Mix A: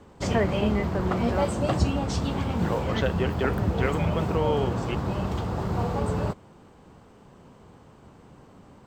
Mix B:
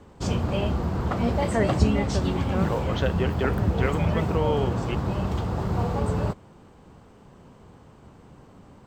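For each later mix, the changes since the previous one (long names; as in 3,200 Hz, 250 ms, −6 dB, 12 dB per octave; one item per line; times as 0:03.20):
first voice: entry +1.20 s
master: add low-shelf EQ 120 Hz +4 dB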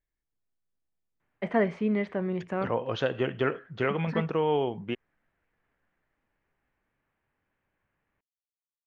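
background: muted
master: add high-shelf EQ 7,600 Hz −11 dB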